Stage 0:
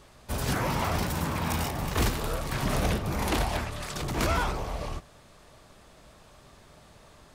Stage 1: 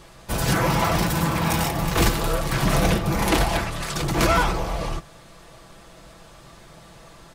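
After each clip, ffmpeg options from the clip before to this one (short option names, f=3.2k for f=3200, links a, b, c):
-af "aecho=1:1:6:0.49,volume=6.5dB"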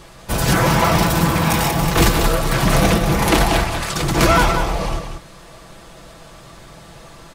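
-af "aecho=1:1:187:0.422,volume=5dB"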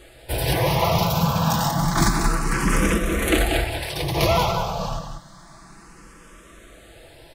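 -filter_complex "[0:a]asplit=2[a][b];[b]afreqshift=0.29[c];[a][c]amix=inputs=2:normalize=1,volume=-2dB"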